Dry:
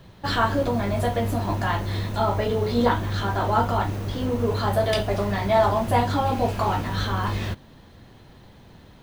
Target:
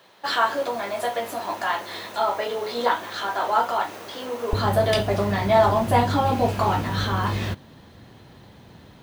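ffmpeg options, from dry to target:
-af "asetnsamples=n=441:p=0,asendcmd='4.53 highpass f 73',highpass=550,volume=1.26"

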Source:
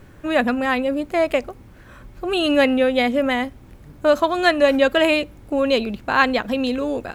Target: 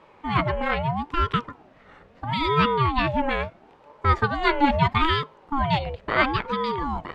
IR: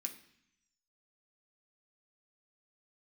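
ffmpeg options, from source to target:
-af "highpass=140,lowpass=3800,bandreject=f=351.3:t=h:w=4,bandreject=f=702.6:t=h:w=4,bandreject=f=1053.9:t=h:w=4,bandreject=f=1405.2:t=h:w=4,bandreject=f=1756.5:t=h:w=4,aeval=exprs='val(0)*sin(2*PI*510*n/s+510*0.45/0.76*sin(2*PI*0.76*n/s))':c=same,volume=0.891"

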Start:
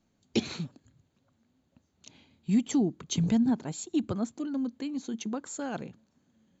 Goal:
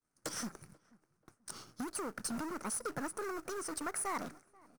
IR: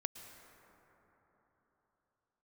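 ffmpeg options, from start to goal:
-filter_complex "[0:a]aeval=exprs='if(lt(val(0),0),0.447*val(0),val(0))':c=same,agate=range=0.0224:threshold=0.001:ratio=3:detection=peak,equalizer=f=6100:w=0.55:g=9,acompressor=threshold=0.01:ratio=6,aeval=exprs='(tanh(126*val(0)+0.15)-tanh(0.15))/126':c=same,acrusher=bits=3:mode=log:mix=0:aa=0.000001,equalizer=f=250:t=o:w=0.67:g=-6,equalizer=f=1000:t=o:w=0.67:g=12,equalizer=f=2500:t=o:w=0.67:g=-9,asetrate=60858,aresample=44100,asplit=2[s0][s1];[s1]adelay=485,lowpass=f=1300:p=1,volume=0.0668,asplit=2[s2][s3];[s3]adelay=485,lowpass=f=1300:p=1,volume=0.33[s4];[s2][s4]amix=inputs=2:normalize=0[s5];[s0][s5]amix=inputs=2:normalize=0,volume=3.16"

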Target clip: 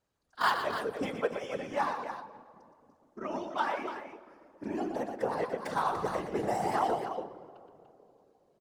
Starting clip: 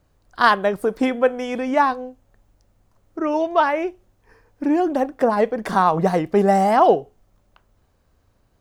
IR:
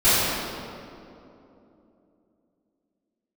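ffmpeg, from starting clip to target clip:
-filter_complex "[0:a]adynamicsmooth=sensitivity=2:basefreq=6400,aemphasis=mode=production:type=bsi,bandreject=f=660:w=12,aecho=1:1:119.5|291.5:0.398|0.355,asplit=2[s0][s1];[1:a]atrim=start_sample=2205[s2];[s1][s2]afir=irnorm=-1:irlink=0,volume=0.0168[s3];[s0][s3]amix=inputs=2:normalize=0,afftfilt=real='hypot(re,im)*cos(2*PI*random(0))':imag='hypot(re,im)*sin(2*PI*random(1))':win_size=512:overlap=0.75,volume=0.422"

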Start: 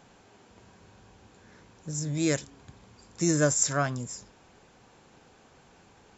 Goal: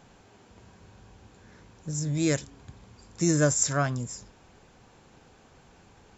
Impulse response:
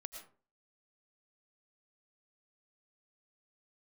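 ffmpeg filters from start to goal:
-af "lowshelf=f=110:g=8"

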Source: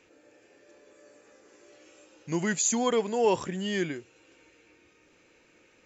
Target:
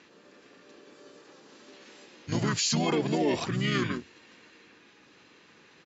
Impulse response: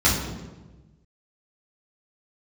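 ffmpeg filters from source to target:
-filter_complex "[0:a]highpass=180,equalizer=f=320:t=q:w=4:g=-9,equalizer=f=550:t=q:w=4:g=-5,equalizer=f=940:t=q:w=4:g=-6,equalizer=f=2100:t=q:w=4:g=-7,equalizer=f=4000:t=q:w=4:g=6,lowpass=f=6600:w=0.5412,lowpass=f=6600:w=1.3066,asplit=3[s0][s1][s2];[s1]asetrate=29433,aresample=44100,atempo=1.49831,volume=1[s3];[s2]asetrate=35002,aresample=44100,atempo=1.25992,volume=0.631[s4];[s0][s3][s4]amix=inputs=3:normalize=0,alimiter=limit=0.0794:level=0:latency=1:release=33,volume=1.58"

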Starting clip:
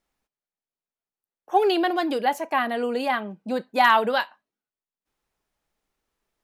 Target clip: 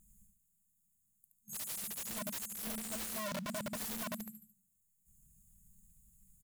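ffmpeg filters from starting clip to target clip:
-af "afftfilt=real='re*(1-between(b*sr/4096,220,6500))':imag='im*(1-between(b*sr/4096,220,6500))':win_size=4096:overlap=0.75,acrusher=bits=6:mode=log:mix=0:aa=0.000001,aecho=1:1:73|146|219|292:0.596|0.203|0.0689|0.0234,acompressor=threshold=0.002:ratio=6,aeval=exprs='(mod(447*val(0)+1,2)-1)/447':c=same,volume=7.94"

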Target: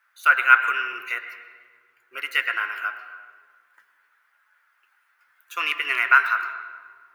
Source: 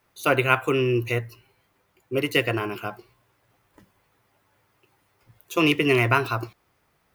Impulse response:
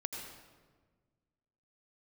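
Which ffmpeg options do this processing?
-filter_complex "[0:a]highpass=f=1500:t=q:w=5.3,asplit=2[s0][s1];[1:a]atrim=start_sample=2205,asetrate=35280,aresample=44100,lowpass=3000[s2];[s1][s2]afir=irnorm=-1:irlink=0,volume=0.631[s3];[s0][s3]amix=inputs=2:normalize=0,volume=0.501"

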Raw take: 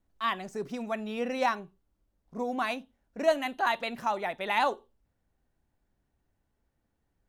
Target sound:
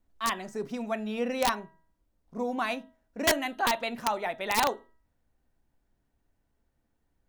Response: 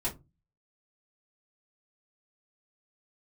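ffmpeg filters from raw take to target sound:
-filter_complex "[0:a]asplit=2[s0][s1];[1:a]atrim=start_sample=2205,highshelf=f=3500:g=-5.5[s2];[s1][s2]afir=irnorm=-1:irlink=0,volume=0.126[s3];[s0][s3]amix=inputs=2:normalize=0,aeval=exprs='(mod(6.68*val(0)+1,2)-1)/6.68':c=same,bandreject=f=322.3:t=h:w=4,bandreject=f=644.6:t=h:w=4,bandreject=f=966.9:t=h:w=4,bandreject=f=1289.2:t=h:w=4,bandreject=f=1611.5:t=h:w=4,bandreject=f=1933.8:t=h:w=4"

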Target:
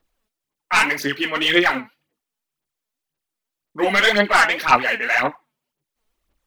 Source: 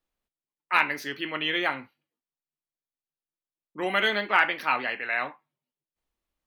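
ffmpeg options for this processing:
-af "aeval=exprs='0.473*(cos(1*acos(clip(val(0)/0.473,-1,1)))-cos(1*PI/2))+0.168*(cos(5*acos(clip(val(0)/0.473,-1,1)))-cos(5*PI/2))':c=same,aphaser=in_gain=1:out_gain=1:delay=4.7:decay=0.65:speed=1.9:type=sinusoidal,volume=0.891"

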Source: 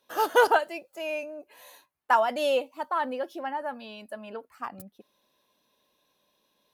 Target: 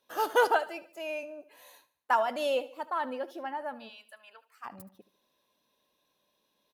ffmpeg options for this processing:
-filter_complex "[0:a]asplit=3[s0][s1][s2];[s0]afade=t=out:st=3.88:d=0.02[s3];[s1]highpass=1400,afade=t=in:st=3.88:d=0.02,afade=t=out:st=4.64:d=0.02[s4];[s2]afade=t=in:st=4.64:d=0.02[s5];[s3][s4][s5]amix=inputs=3:normalize=0,asplit=2[s6][s7];[s7]aecho=0:1:74|148|222|296:0.133|0.06|0.027|0.0122[s8];[s6][s8]amix=inputs=2:normalize=0,volume=0.631"

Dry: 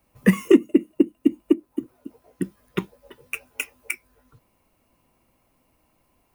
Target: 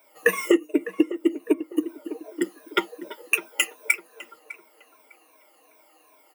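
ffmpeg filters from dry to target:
-filter_complex "[0:a]afftfilt=real='re*pow(10,16/40*sin(2*PI*(1.6*log(max(b,1)*sr/1024/100)/log(2)-(-2.6)*(pts-256)/sr)))':imag='im*pow(10,16/40*sin(2*PI*(1.6*log(max(b,1)*sr/1024/100)/log(2)-(-2.6)*(pts-256)/sr)))':win_size=1024:overlap=0.75,highpass=f=370:w=0.5412,highpass=f=370:w=1.3066,aecho=1:1:6.5:0.62,acompressor=threshold=0.0708:ratio=5,asplit=2[s0][s1];[s1]adelay=604,lowpass=f=1600:p=1,volume=0.224,asplit=2[s2][s3];[s3]adelay=604,lowpass=f=1600:p=1,volume=0.35,asplit=2[s4][s5];[s5]adelay=604,lowpass=f=1600:p=1,volume=0.35[s6];[s0][s2][s4][s6]amix=inputs=4:normalize=0,volume=2.11"

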